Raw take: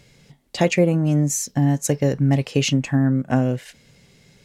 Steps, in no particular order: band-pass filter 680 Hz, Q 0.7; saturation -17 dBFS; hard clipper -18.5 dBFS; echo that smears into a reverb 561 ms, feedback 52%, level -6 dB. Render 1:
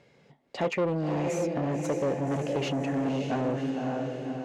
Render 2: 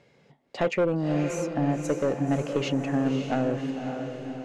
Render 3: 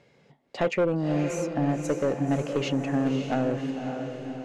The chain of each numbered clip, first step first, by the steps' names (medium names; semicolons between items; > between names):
echo that smears into a reverb > hard clipper > band-pass filter > saturation; band-pass filter > saturation > hard clipper > echo that smears into a reverb; band-pass filter > saturation > echo that smears into a reverb > hard clipper